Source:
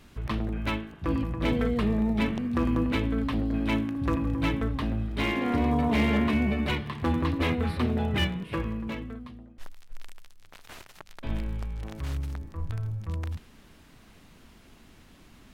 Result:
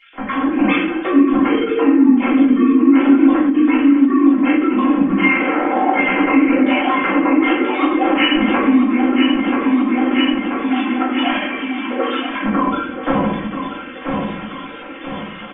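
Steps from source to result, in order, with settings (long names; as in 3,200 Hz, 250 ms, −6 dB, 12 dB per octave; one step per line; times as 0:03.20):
three sine waves on the formant tracks
in parallel at −1 dB: brickwall limiter −22.5 dBFS, peak gain reduction 9.5 dB
on the sum: mains-hum notches 60/120/180/240 Hz
on a send: repeating echo 983 ms, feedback 45%, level −9.5 dB
on the sum: downward compressor 5 to 1, threshold −33 dBFS, peak gain reduction 16.5 dB
comb filter 3.8 ms, depth 74%
rectangular room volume 160 cubic metres, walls mixed, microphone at 3.2 metres
automatic gain control gain up to 10 dB
every ending faded ahead of time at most 140 dB per second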